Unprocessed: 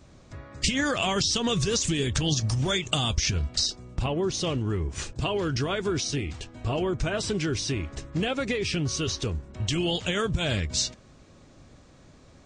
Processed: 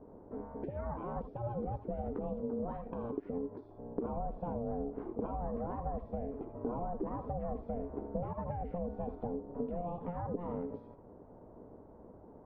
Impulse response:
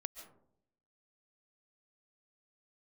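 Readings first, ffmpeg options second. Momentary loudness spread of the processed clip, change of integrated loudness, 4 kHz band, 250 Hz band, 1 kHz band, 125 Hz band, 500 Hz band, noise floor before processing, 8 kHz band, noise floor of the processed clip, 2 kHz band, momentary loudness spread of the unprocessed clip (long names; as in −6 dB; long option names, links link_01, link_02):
16 LU, −12.5 dB, below −40 dB, −9.5 dB, −6.0 dB, −14.5 dB, −8.0 dB, −53 dBFS, below −40 dB, −55 dBFS, −30.0 dB, 7 LU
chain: -filter_complex "[0:a]aeval=exprs='val(0)*sin(2*PI*350*n/s)':channel_layout=same[link_01];[1:a]atrim=start_sample=2205,afade=type=out:start_time=0.2:duration=0.01,atrim=end_sample=9261,asetrate=79380,aresample=44100[link_02];[link_01][link_02]afir=irnorm=-1:irlink=0,acompressor=threshold=-43dB:ratio=10,lowpass=frequency=1000:width=0.5412,lowpass=frequency=1000:width=1.3066,volume=10.5dB"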